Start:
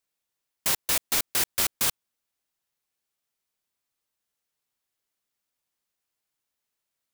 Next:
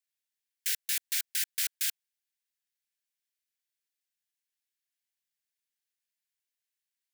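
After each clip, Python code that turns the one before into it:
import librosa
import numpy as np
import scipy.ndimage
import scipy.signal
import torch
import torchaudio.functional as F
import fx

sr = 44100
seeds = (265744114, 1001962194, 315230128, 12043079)

y = scipy.signal.sosfilt(scipy.signal.butter(16, 1500.0, 'highpass', fs=sr, output='sos'), x)
y = y * 10.0 ** (-5.5 / 20.0)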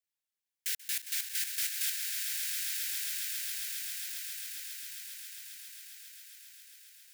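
y = fx.echo_swell(x, sr, ms=135, loudest=8, wet_db=-8)
y = y * 10.0 ** (-3.5 / 20.0)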